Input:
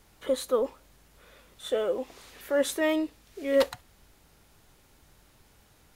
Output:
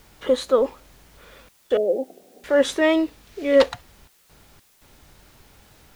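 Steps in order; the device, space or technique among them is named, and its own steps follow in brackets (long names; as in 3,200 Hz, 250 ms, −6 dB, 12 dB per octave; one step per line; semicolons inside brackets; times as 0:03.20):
0:01.77–0:02.44: Chebyshev band-pass filter 180–760 Hz, order 5
worn cassette (low-pass filter 6,000 Hz 12 dB per octave; tape wow and flutter; tape dropouts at 0:01.49/0:04.08/0:04.60, 211 ms −29 dB; white noise bed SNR 35 dB)
level +7.5 dB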